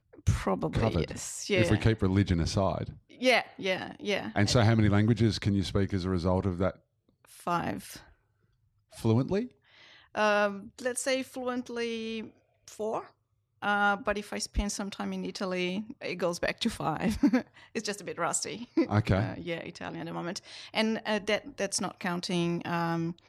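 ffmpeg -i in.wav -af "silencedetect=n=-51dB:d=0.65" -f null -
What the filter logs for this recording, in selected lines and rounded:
silence_start: 8.12
silence_end: 8.92 | silence_duration: 0.80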